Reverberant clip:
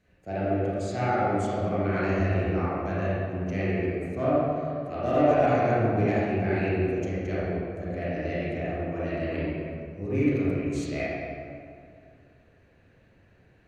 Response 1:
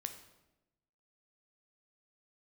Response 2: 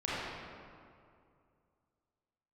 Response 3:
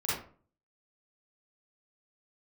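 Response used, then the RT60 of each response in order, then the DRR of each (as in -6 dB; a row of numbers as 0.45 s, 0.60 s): 2; 1.0 s, 2.4 s, 0.45 s; 6.5 dB, -9.5 dB, -9.0 dB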